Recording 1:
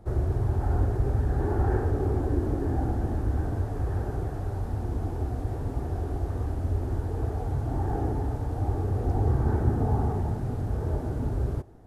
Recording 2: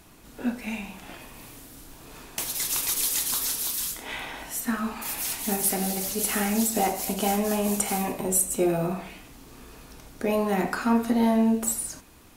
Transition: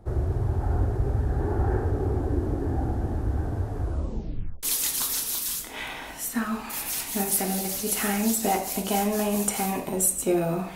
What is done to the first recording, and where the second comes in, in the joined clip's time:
recording 1
0:03.80: tape stop 0.83 s
0:04.63: continue with recording 2 from 0:02.95

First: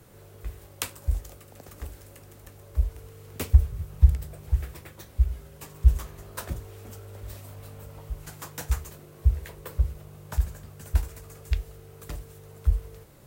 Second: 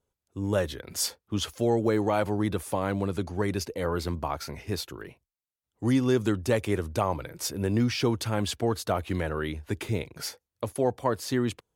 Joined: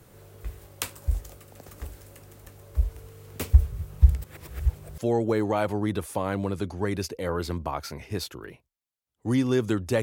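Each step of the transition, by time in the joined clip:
first
0:04.24–0:04.98: reverse
0:04.98: continue with second from 0:01.55

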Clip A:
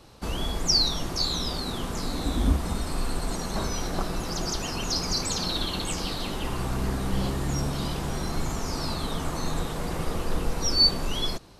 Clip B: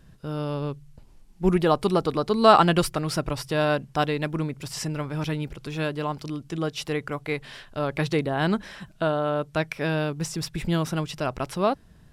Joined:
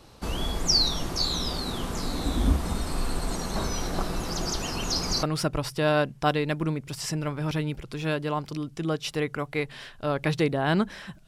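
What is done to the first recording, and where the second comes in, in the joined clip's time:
clip A
0:05.23: continue with clip B from 0:02.96

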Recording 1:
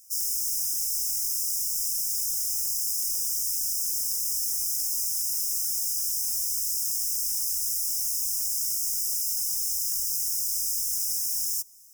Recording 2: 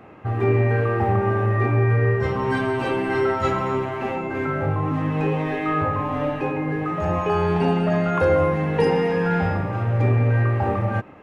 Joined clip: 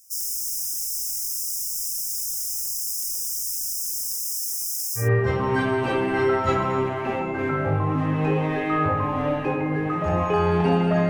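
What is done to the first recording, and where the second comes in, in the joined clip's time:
recording 1
0:04.14–0:05.09: high-pass filter 270 Hz → 1,100 Hz
0:05.02: continue with recording 2 from 0:01.98, crossfade 0.14 s

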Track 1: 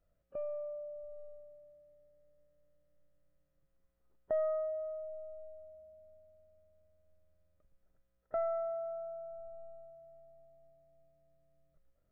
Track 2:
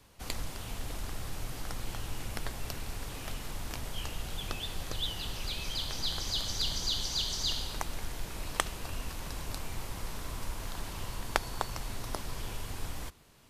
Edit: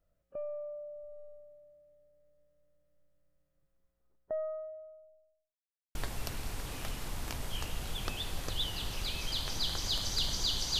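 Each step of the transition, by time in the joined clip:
track 1
0:03.70–0:05.58: fade out and dull
0:05.58–0:05.95: silence
0:05.95: continue with track 2 from 0:02.38

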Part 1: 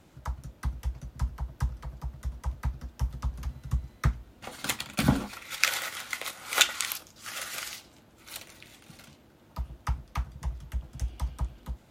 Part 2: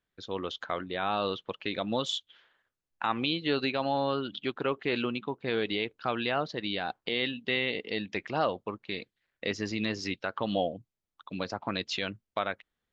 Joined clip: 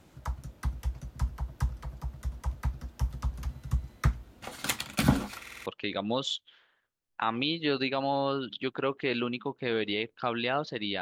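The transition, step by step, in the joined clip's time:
part 1
0:05.41: stutter in place 0.05 s, 5 plays
0:05.66: continue with part 2 from 0:01.48

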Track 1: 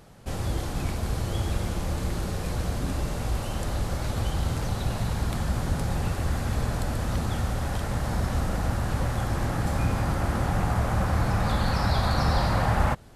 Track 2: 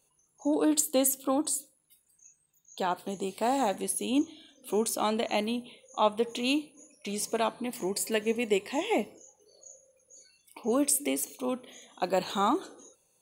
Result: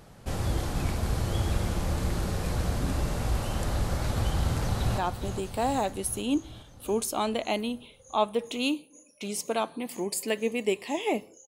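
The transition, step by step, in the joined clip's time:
track 1
0:04.39–0:04.98: delay throw 410 ms, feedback 65%, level −9 dB
0:04.98: continue with track 2 from 0:02.82

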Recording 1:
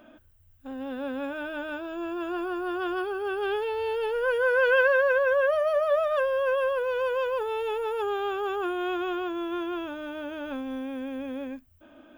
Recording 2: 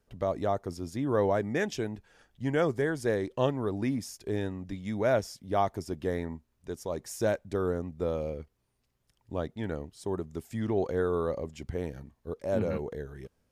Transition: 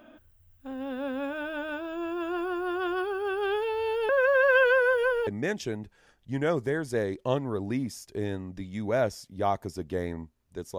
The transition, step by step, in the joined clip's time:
recording 1
0:04.09–0:05.27: reverse
0:05.27: continue with recording 2 from 0:01.39

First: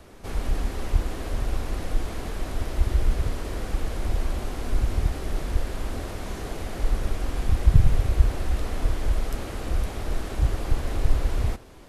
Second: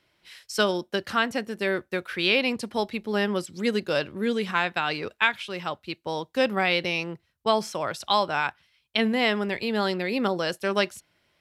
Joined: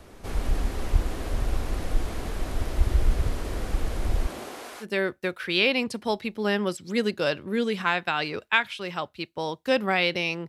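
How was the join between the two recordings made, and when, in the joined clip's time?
first
0:04.26–0:04.86: high-pass filter 160 Hz → 990 Hz
0:04.83: continue with second from 0:01.52, crossfade 0.06 s

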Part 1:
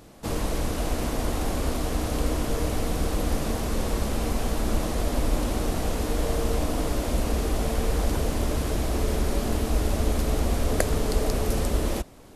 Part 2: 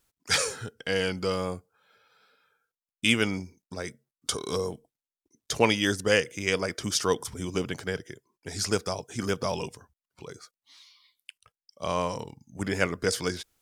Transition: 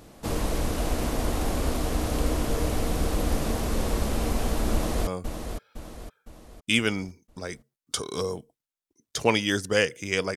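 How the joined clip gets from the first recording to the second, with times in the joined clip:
part 1
0:04.73–0:05.07: delay throw 510 ms, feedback 45%, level −7.5 dB
0:05.07: continue with part 2 from 0:01.42

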